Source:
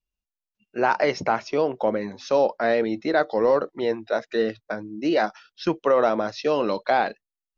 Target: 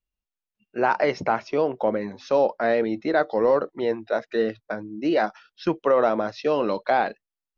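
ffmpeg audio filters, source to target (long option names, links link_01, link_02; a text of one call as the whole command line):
ffmpeg -i in.wav -af "highshelf=frequency=5800:gain=-12" out.wav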